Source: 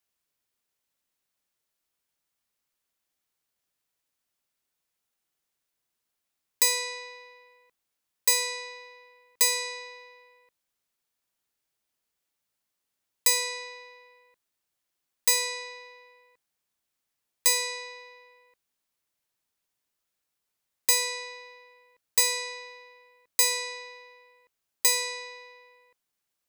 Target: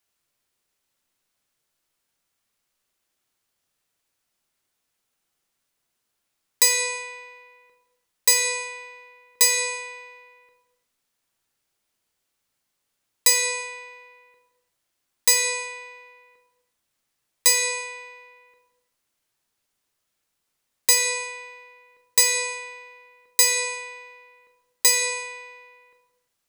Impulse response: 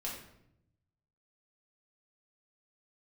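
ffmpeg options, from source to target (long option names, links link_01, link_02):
-filter_complex "[0:a]asplit=2[link_01][link_02];[1:a]atrim=start_sample=2205,afade=type=out:start_time=0.26:duration=0.01,atrim=end_sample=11907,asetrate=22491,aresample=44100[link_03];[link_02][link_03]afir=irnorm=-1:irlink=0,volume=-6dB[link_04];[link_01][link_04]amix=inputs=2:normalize=0,volume=2dB"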